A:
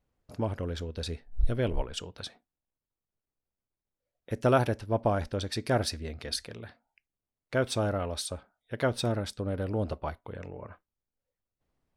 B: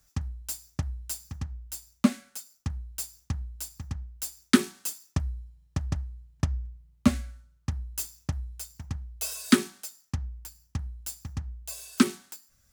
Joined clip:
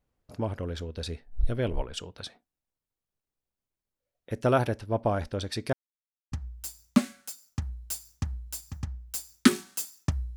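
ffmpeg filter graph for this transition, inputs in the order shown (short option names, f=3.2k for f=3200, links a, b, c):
-filter_complex "[0:a]apad=whole_dur=10.36,atrim=end=10.36,asplit=2[a][b];[a]atrim=end=5.73,asetpts=PTS-STARTPTS,afade=t=out:st=5.726:d=0.004:c=hsin[c];[b]atrim=start=5.73:end=6.32,asetpts=PTS-STARTPTS,volume=0[d];[1:a]atrim=start=1.4:end=5.44,asetpts=PTS-STARTPTS,afade=t=in:d=0.004:c=hsin[e];[c][d][e]concat=n=3:v=0:a=1"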